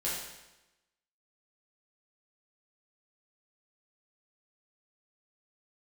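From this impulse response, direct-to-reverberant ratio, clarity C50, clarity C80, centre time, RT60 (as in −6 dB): −7.5 dB, 0.5 dB, 3.5 dB, 67 ms, 1.0 s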